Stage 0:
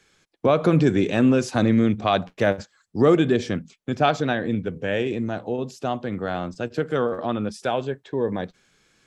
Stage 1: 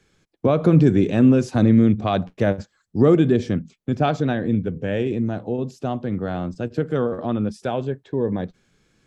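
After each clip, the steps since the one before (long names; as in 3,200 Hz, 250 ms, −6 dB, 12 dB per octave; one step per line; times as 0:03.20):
low-shelf EQ 440 Hz +11.5 dB
level −5 dB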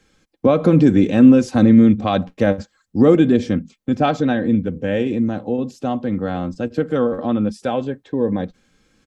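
comb filter 3.8 ms, depth 48%
level +2.5 dB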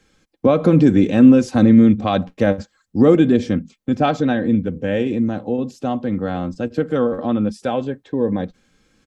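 no processing that can be heard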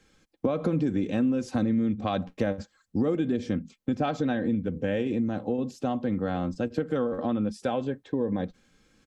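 downward compressor 5 to 1, threshold −20 dBFS, peak gain reduction 13.5 dB
level −3.5 dB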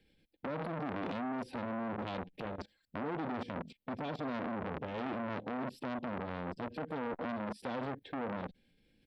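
output level in coarse steps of 19 dB
phaser with its sweep stopped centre 2,900 Hz, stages 4
saturating transformer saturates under 1,400 Hz
level +7 dB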